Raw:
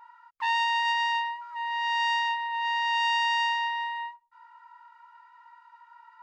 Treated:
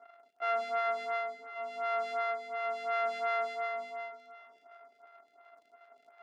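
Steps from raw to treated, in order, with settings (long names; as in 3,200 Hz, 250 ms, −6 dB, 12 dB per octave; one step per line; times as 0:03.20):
samples sorted by size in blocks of 64 samples
low-pass filter 1,400 Hz 12 dB per octave
spectral tilt +5.5 dB per octave
surface crackle 38 per second −45 dBFS
resonant band-pass 1,000 Hz, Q 0.51
convolution reverb RT60 2.8 s, pre-delay 81 ms, DRR 10 dB
phaser with staggered stages 2.8 Hz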